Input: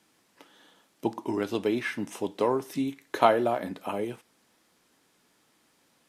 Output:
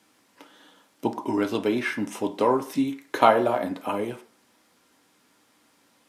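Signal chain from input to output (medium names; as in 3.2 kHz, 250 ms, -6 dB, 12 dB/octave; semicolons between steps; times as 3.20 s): high-pass 56 Hz; on a send: reverberation RT60 0.45 s, pre-delay 3 ms, DRR 4 dB; on the sum: trim +3 dB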